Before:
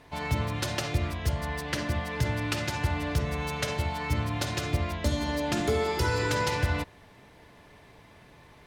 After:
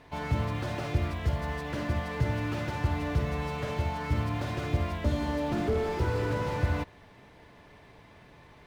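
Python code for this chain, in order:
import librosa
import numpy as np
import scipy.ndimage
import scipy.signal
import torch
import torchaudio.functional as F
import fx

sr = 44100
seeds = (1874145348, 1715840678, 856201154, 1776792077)

y = fx.high_shelf(x, sr, hz=8100.0, db=-12.0)
y = fx.quant_float(y, sr, bits=4)
y = fx.slew_limit(y, sr, full_power_hz=24.0)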